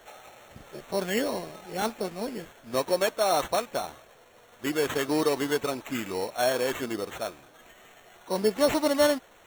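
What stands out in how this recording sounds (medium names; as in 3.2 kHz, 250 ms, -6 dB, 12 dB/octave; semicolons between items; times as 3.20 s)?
aliases and images of a low sample rate 4.9 kHz, jitter 0%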